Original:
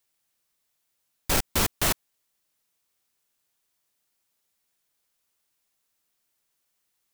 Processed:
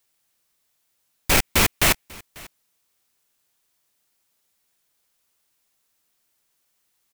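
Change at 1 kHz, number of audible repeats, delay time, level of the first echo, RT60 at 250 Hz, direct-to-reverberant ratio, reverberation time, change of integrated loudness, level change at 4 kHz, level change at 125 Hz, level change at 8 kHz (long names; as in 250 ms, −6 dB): +5.5 dB, 1, 543 ms, −23.5 dB, no reverb audible, no reverb audible, no reverb audible, +6.0 dB, +6.5 dB, +5.0 dB, +5.0 dB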